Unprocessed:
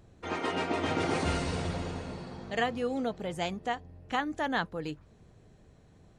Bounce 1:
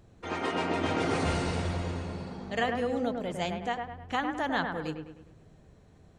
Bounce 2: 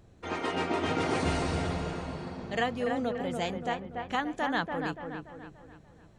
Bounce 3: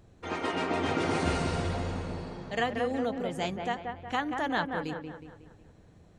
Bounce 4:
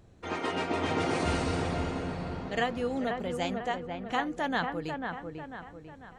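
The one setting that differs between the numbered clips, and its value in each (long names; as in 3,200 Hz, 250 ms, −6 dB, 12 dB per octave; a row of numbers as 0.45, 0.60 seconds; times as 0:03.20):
delay with a low-pass on its return, delay time: 103, 288, 183, 495 milliseconds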